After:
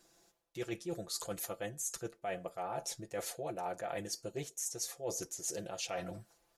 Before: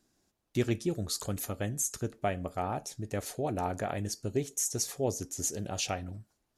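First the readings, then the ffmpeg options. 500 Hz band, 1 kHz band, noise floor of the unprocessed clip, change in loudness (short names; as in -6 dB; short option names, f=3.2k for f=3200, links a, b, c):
-5.5 dB, -5.5 dB, -79 dBFS, -6.5 dB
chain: -af "lowshelf=f=350:t=q:w=1.5:g=-7.5,aecho=1:1:5.9:0.79,areverse,acompressor=threshold=-43dB:ratio=6,areverse,volume=5.5dB"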